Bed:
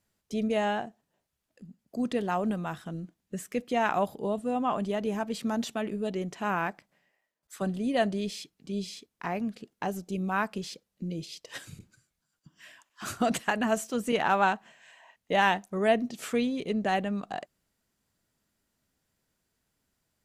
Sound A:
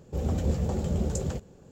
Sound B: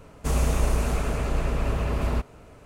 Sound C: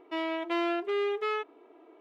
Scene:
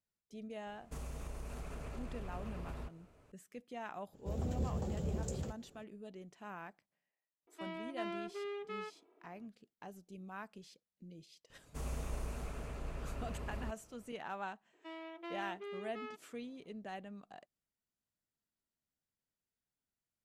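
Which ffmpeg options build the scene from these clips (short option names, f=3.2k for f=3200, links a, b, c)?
-filter_complex "[2:a]asplit=2[a][b];[3:a]asplit=2[c][d];[0:a]volume=-18.5dB[e];[a]acompressor=threshold=-27dB:ratio=5:attack=34:release=83:knee=1:detection=rms,atrim=end=2.65,asetpts=PTS-STARTPTS,volume=-16dB,afade=t=in:d=0.004:c=hsin,afade=t=out:st=2.646:d=0.004:c=hsin,adelay=670[f];[1:a]atrim=end=1.71,asetpts=PTS-STARTPTS,volume=-10dB,afade=t=in:d=0.004:c=hsin,afade=t=out:st=1.706:d=0.004:c=hsin,adelay=182133S[g];[c]atrim=end=2,asetpts=PTS-STARTPTS,volume=-13dB,afade=t=in:d=0.004:c=hsin,afade=t=out:st=1.996:d=0.004:c=hsin,adelay=7470[h];[b]atrim=end=2.65,asetpts=PTS-STARTPTS,volume=-17.5dB,afade=t=in:d=0.004:c=hsin,afade=t=out:st=2.646:d=0.004:c=hsin,adelay=11500[i];[d]atrim=end=2,asetpts=PTS-STARTPTS,volume=-16dB,afade=t=in:d=0.004:c=hsin,afade=t=out:st=1.996:d=0.004:c=hsin,adelay=14730[j];[e][f][g][h][i][j]amix=inputs=6:normalize=0"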